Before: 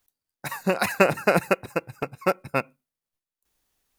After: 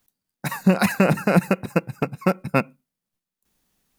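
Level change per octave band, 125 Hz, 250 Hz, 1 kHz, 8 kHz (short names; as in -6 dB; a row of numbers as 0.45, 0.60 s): +10.0, +9.0, +0.5, +1.5 dB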